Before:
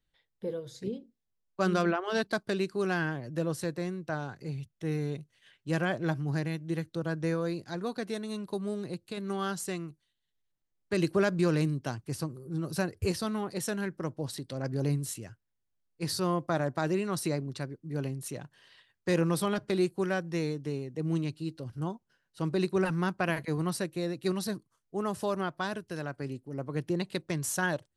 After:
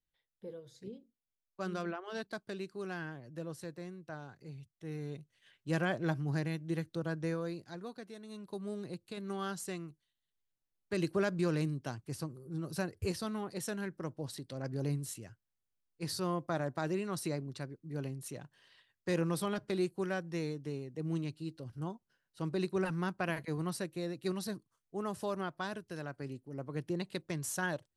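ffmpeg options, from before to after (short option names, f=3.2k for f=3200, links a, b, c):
-af "volume=6dB,afade=t=in:st=4.85:d=0.89:silence=0.398107,afade=t=out:st=6.9:d=1.24:silence=0.266073,afade=t=in:st=8.14:d=0.63:silence=0.354813"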